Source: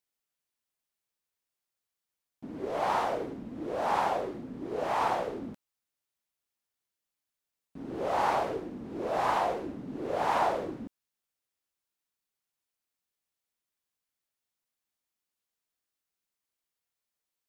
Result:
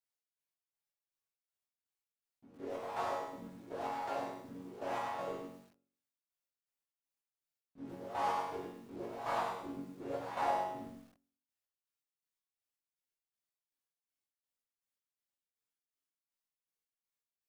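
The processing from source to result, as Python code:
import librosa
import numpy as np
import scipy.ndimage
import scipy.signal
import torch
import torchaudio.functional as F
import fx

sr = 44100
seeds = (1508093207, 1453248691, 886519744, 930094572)

y = fx.chopper(x, sr, hz=2.7, depth_pct=65, duty_pct=45)
y = fx.resonator_bank(y, sr, root=42, chord='major', decay_s=0.58)
y = fx.echo_crushed(y, sr, ms=102, feedback_pct=35, bits=12, wet_db=-5.0)
y = y * 10.0 ** (9.0 / 20.0)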